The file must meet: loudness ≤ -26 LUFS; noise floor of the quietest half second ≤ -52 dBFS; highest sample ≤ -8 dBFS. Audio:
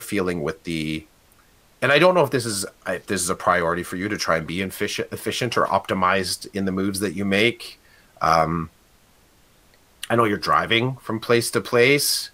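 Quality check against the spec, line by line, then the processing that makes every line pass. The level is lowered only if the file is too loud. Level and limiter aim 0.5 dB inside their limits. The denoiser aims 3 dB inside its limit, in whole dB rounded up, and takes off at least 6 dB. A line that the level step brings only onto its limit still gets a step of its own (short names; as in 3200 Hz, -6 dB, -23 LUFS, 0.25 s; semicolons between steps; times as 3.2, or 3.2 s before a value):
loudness -21.5 LUFS: fail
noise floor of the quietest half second -56 dBFS: OK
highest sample -4.5 dBFS: fail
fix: gain -5 dB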